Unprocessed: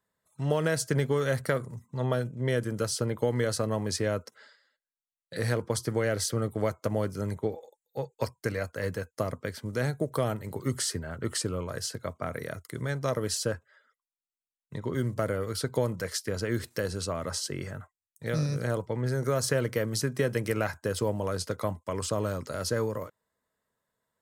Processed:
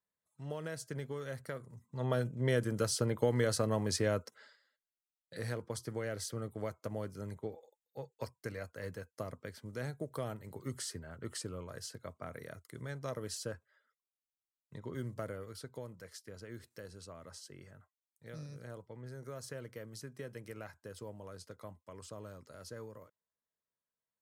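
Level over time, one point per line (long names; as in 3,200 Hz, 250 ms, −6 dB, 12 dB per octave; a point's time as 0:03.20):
0:01.59 −14.5 dB
0:02.22 −3 dB
0:04.15 −3 dB
0:05.60 −11 dB
0:15.17 −11 dB
0:15.80 −18 dB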